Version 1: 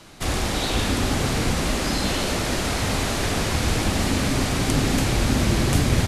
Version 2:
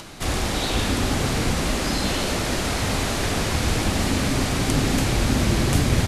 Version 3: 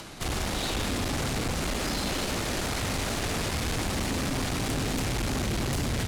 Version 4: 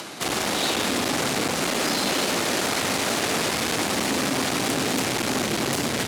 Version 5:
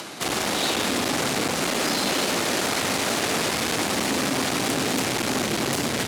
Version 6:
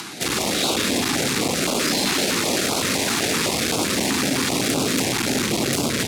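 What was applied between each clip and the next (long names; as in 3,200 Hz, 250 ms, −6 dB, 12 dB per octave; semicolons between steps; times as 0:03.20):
upward compression, threshold −33 dBFS
tube saturation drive 26 dB, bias 0.6
high-pass filter 230 Hz 12 dB per octave; level +7.5 dB
no processing that can be heard
notch filter 3,000 Hz, Q 28; notch on a step sequencer 7.8 Hz 570–1,800 Hz; level +4 dB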